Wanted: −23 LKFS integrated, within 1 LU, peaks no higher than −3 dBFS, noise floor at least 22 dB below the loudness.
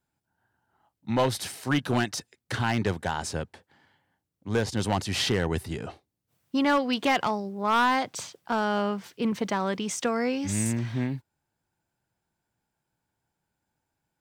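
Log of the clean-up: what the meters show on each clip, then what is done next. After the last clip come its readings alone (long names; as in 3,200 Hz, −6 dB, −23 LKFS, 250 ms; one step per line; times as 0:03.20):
share of clipped samples 0.5%; peaks flattened at −17.0 dBFS; integrated loudness −27.5 LKFS; sample peak −17.0 dBFS; target loudness −23.0 LKFS
→ clipped peaks rebuilt −17 dBFS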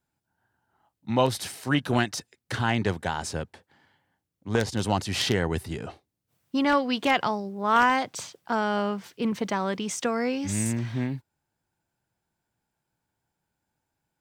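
share of clipped samples 0.0%; integrated loudness −27.0 LKFS; sample peak −8.0 dBFS; target loudness −23.0 LKFS
→ level +4 dB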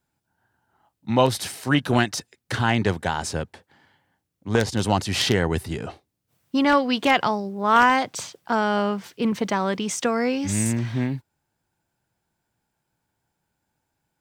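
integrated loudness −23.0 LKFS; sample peak −4.0 dBFS; background noise floor −79 dBFS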